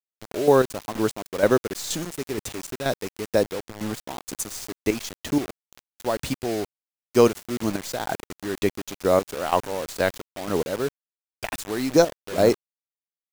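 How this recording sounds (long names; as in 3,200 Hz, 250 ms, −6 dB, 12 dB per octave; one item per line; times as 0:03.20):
chopped level 2.1 Hz, depth 65%, duty 30%
a quantiser's noise floor 6 bits, dither none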